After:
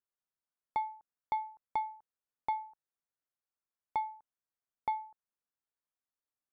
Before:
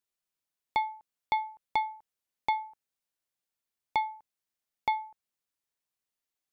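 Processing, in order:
high shelf with overshoot 2,000 Hz −9 dB, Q 1.5
level −6 dB

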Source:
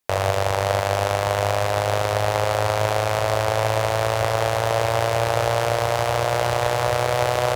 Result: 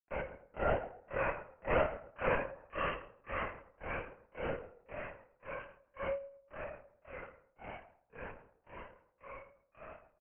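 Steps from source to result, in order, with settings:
source passing by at 0:01.54, 19 m/s, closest 11 metres
high-pass filter 700 Hz 24 dB per octave
notch filter 1,100 Hz, Q 12
resonators tuned to a chord B2 fifth, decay 0.61 s
granular cloud 213 ms, grains 2.5 per second, spray 35 ms, pitch spread up and down by 0 semitones
double-tracking delay 28 ms −4.5 dB
tape delay 85 ms, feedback 34%, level −10.5 dB, low-pass 1,700 Hz
linear-prediction vocoder at 8 kHz whisper
wrong playback speed 45 rpm record played at 33 rpm
level +15 dB

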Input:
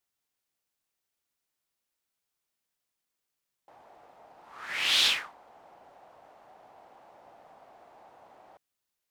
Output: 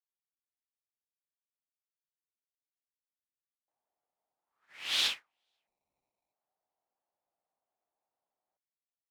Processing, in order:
repeating echo 487 ms, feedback 27%, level −22 dB
0:05.67–0:06.33: sample-rate reduction 1,600 Hz, jitter 0%
expander for the loud parts 2.5 to 1, over −44 dBFS
level −4.5 dB

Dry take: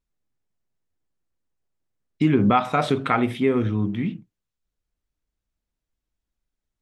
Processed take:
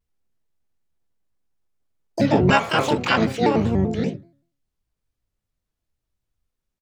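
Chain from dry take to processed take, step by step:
hum removal 155.4 Hz, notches 15
pitch-shifted copies added −5 semitones −4 dB, +12 semitones −2 dB
pitch modulation by a square or saw wave square 5.2 Hz, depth 160 cents
level −1 dB

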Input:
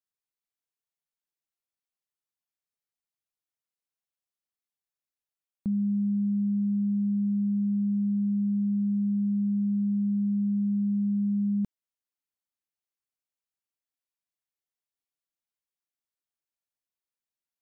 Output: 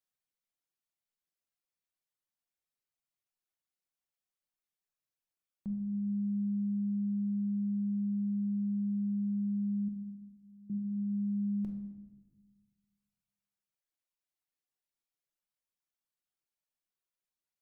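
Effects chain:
reverb reduction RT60 1.8 s
brickwall limiter −34.5 dBFS, peak gain reduction 11.5 dB
0:09.88–0:10.70: phaser with its sweep stopped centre 310 Hz, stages 8
rectangular room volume 620 cubic metres, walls mixed, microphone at 0.98 metres

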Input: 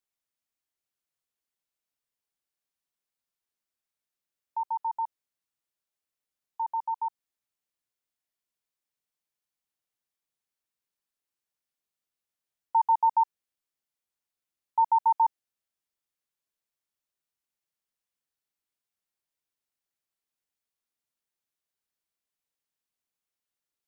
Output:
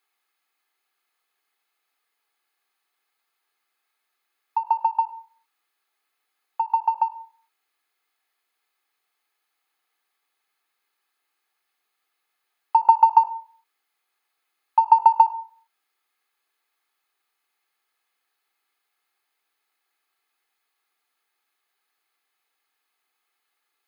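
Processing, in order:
high-pass filter 640 Hz 12 dB per octave
in parallel at −10 dB: hard clipping −33 dBFS, distortion −5 dB
on the sum: convolution reverb RT60 0.45 s, pre-delay 3 ms, DRR 17 dB
every ending faded ahead of time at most 260 dB per second
level +7.5 dB

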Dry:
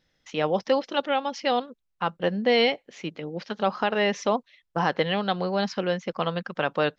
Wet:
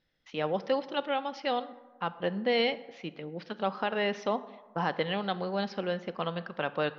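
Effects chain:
low-pass filter 5,000 Hz 24 dB per octave
on a send: convolution reverb RT60 1.3 s, pre-delay 23 ms, DRR 14.5 dB
on the sum: level −6 dB

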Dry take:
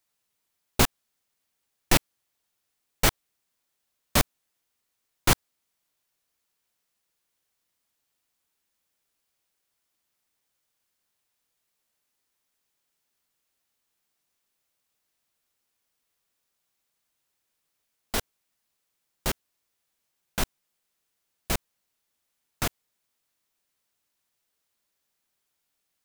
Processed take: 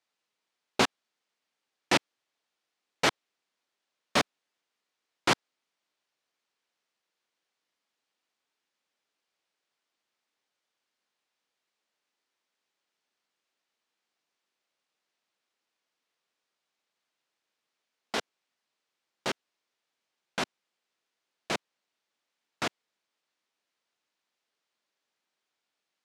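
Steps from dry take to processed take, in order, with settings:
band-pass filter 240–4,900 Hz

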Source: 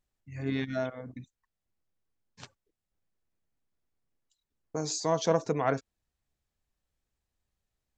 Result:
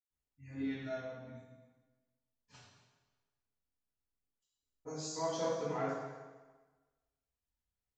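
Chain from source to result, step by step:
reverb reduction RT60 0.78 s
convolution reverb RT60 1.3 s, pre-delay 103 ms, DRR −60 dB
level +2 dB

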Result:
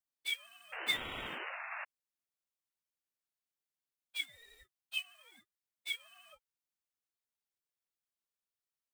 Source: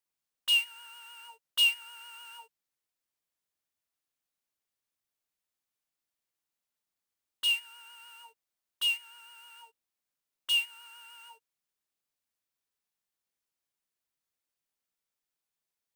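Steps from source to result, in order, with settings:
time stretch by phase vocoder 0.56×
sound drawn into the spectrogram noise, 0:00.72–0:01.85, 860–2,500 Hz −38 dBFS
ring modulator whose carrier an LFO sweeps 590 Hz, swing 65%, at 0.89 Hz
level −2 dB

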